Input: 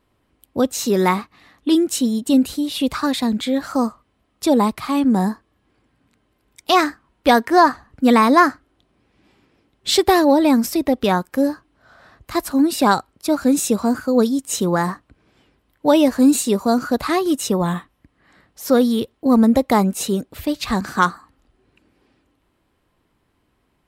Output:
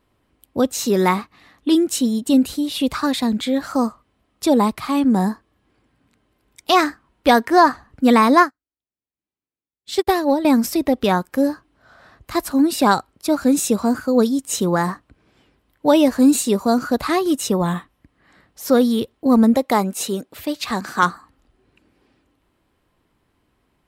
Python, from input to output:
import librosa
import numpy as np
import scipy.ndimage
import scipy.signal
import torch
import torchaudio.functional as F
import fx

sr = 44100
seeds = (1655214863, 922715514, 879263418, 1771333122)

y = fx.upward_expand(x, sr, threshold_db=-35.0, expansion=2.5, at=(8.4, 10.45))
y = fx.highpass(y, sr, hz=300.0, slope=6, at=(19.54, 21.03))